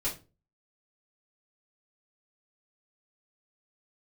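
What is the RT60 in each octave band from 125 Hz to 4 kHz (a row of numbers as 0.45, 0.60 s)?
0.50, 0.40, 0.35, 0.25, 0.25, 0.25 s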